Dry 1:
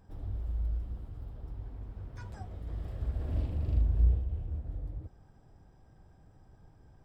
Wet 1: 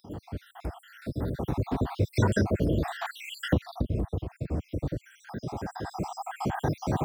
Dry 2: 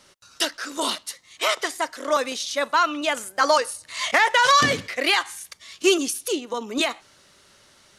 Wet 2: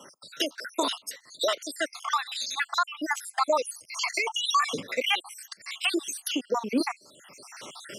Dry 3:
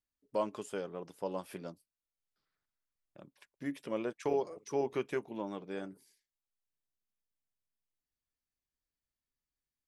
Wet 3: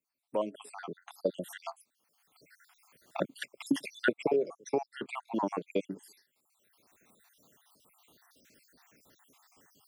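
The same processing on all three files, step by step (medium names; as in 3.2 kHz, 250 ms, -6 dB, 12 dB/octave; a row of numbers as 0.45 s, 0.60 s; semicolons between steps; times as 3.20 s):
random holes in the spectrogram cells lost 66%; recorder AGC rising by 11 dB/s; high-pass 210 Hz 12 dB/octave; bass shelf 370 Hz +4 dB; three bands compressed up and down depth 40%; peak normalisation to -12 dBFS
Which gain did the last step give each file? +8.5 dB, -3.0 dB, -4.0 dB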